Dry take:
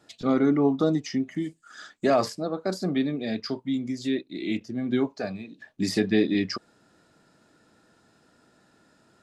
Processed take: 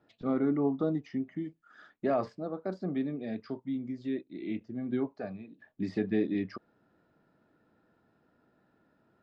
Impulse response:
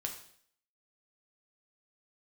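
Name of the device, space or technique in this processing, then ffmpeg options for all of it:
phone in a pocket: -af "lowpass=3300,highshelf=f=2400:g=-11,volume=0.473"

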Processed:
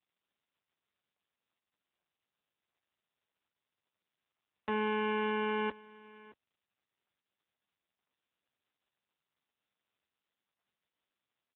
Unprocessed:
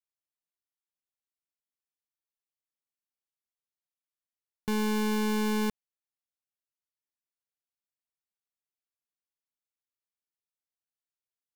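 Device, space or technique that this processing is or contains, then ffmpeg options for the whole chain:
satellite phone: -af "highpass=370,lowpass=3200,aecho=1:1:620:0.0944,volume=1.26" -ar 8000 -c:a libopencore_amrnb -b:a 6700

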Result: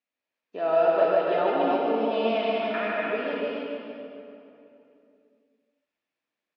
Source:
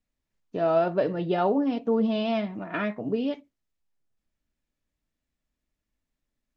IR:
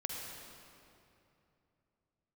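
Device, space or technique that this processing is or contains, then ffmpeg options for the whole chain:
station announcement: -filter_complex "[0:a]highpass=440,lowpass=4100,equalizer=f=2500:t=o:w=0.27:g=5,aecho=1:1:151.6|288.6:0.631|0.708[s0];[1:a]atrim=start_sample=2205[s1];[s0][s1]afir=irnorm=-1:irlink=0"

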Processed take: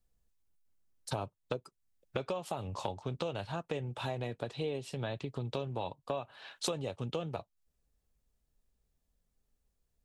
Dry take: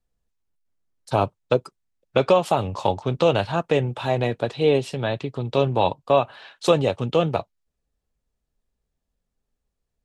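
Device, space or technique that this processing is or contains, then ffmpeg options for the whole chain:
ASMR close-microphone chain: -af "lowshelf=f=150:g=4,acompressor=threshold=0.0251:ratio=5,highshelf=f=6500:g=7.5,volume=0.708"

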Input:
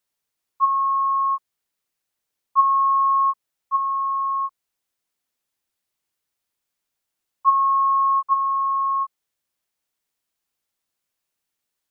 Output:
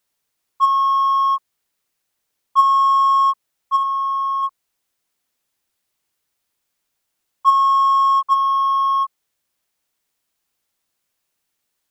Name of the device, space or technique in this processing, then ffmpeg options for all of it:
parallel distortion: -filter_complex "[0:a]asettb=1/sr,asplit=3[s0][s1][s2];[s0]atrim=end=3.834[s3];[s1]atrim=start=3.83:end=4.43,asetpts=PTS-STARTPTS,afade=t=in:d=0.004:c=qsin,afade=t=out:st=0.596:d=0.004:c=qsin,equalizer=f=1000:t=o:w=0.36:g=-4.5[s4];[s2]atrim=start=4.426[s5];[s3][s4]acrossfade=d=0.004:c1=hsin:c2=qsin[s6];[s6][s5]acrossfade=d=0.004:c1=qsin:c2=hsin,asplit=2[s7][s8];[s8]asoftclip=type=hard:threshold=0.0531,volume=0.562[s9];[s7][s9]amix=inputs=2:normalize=0,volume=1.26"

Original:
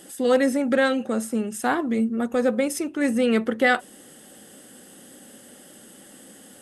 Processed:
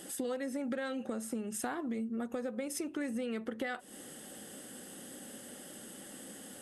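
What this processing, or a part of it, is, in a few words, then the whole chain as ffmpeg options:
serial compression, leveller first: -af "acompressor=threshold=0.0562:ratio=2,acompressor=threshold=0.0224:ratio=6,volume=0.841"

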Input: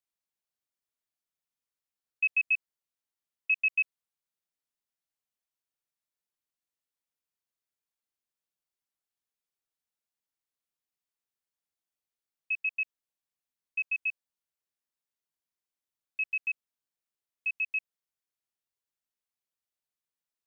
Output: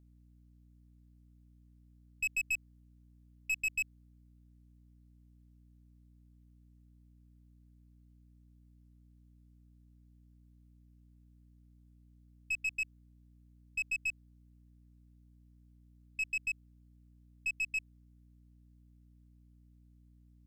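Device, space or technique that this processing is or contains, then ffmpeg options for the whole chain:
valve amplifier with mains hum: -af "aeval=exprs='(tanh(28.2*val(0)+0.2)-tanh(0.2))/28.2':c=same,aeval=exprs='val(0)+0.001*(sin(2*PI*60*n/s)+sin(2*PI*2*60*n/s)/2+sin(2*PI*3*60*n/s)/3+sin(2*PI*4*60*n/s)/4+sin(2*PI*5*60*n/s)/5)':c=same"

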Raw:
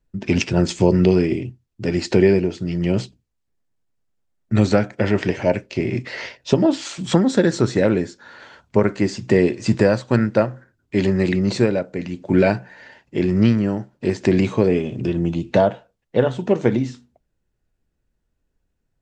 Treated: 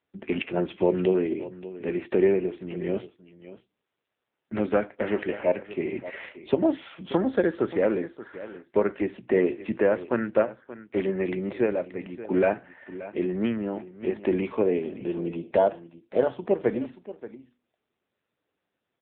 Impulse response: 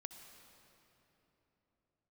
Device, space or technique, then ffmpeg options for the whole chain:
satellite phone: -filter_complex "[0:a]asplit=3[s0][s1][s2];[s0]afade=t=out:st=13.39:d=0.02[s3];[s1]lowpass=f=6600:w=0.5412,lowpass=f=6600:w=1.3066,afade=t=in:st=13.39:d=0.02,afade=t=out:st=14.55:d=0.02[s4];[s2]afade=t=in:st=14.55:d=0.02[s5];[s3][s4][s5]amix=inputs=3:normalize=0,highpass=310,lowpass=3100,aecho=1:1:579:0.168,volume=0.668" -ar 8000 -c:a libopencore_amrnb -b:a 6700

